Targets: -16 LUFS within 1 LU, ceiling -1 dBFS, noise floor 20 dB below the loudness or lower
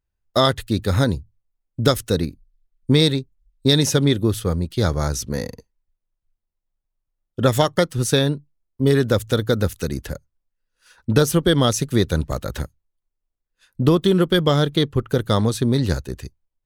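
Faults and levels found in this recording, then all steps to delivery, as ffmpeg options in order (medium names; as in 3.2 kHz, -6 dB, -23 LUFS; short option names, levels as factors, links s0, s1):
loudness -20.0 LUFS; peak level -2.5 dBFS; loudness target -16.0 LUFS
-> -af "volume=1.58,alimiter=limit=0.891:level=0:latency=1"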